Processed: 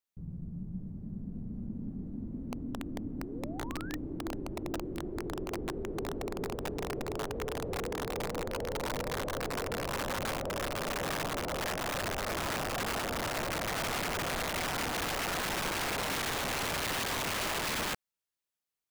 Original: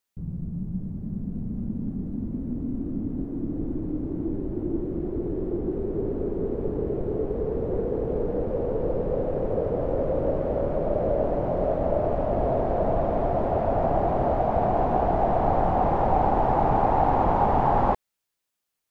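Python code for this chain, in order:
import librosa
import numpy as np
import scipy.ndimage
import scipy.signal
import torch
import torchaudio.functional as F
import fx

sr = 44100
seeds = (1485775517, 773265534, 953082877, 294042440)

y = fx.spec_paint(x, sr, seeds[0], shape='rise', start_s=3.2, length_s=0.76, low_hz=320.0, high_hz=1900.0, level_db=-39.0)
y = (np.mod(10.0 ** (19.5 / 20.0) * y + 1.0, 2.0) - 1.0) / 10.0 ** (19.5 / 20.0)
y = y * 10.0 ** (-9.0 / 20.0)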